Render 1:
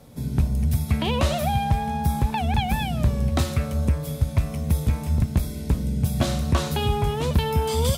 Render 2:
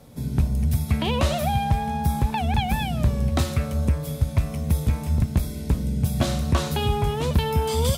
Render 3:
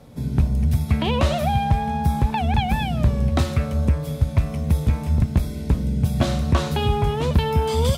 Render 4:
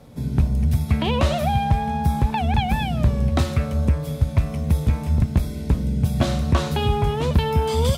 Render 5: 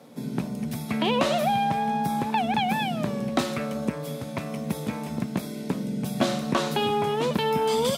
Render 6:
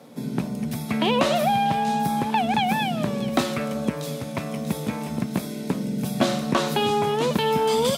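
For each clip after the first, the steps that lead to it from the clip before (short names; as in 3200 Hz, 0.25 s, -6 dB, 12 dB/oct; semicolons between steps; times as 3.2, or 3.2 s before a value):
nothing audible
high shelf 6300 Hz -9.5 dB; gain +2.5 dB
crackle 23/s -49 dBFS
HPF 190 Hz 24 dB/oct
thin delay 0.639 s, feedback 44%, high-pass 4700 Hz, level -5 dB; gain +2.5 dB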